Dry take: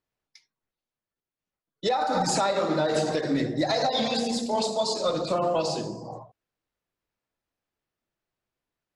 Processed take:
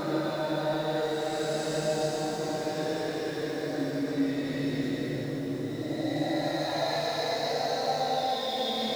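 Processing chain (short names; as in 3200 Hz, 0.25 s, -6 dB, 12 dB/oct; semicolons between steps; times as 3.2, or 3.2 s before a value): zero-crossing step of -35 dBFS; Paulstretch 7.1×, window 0.25 s, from 2.73; gain -5.5 dB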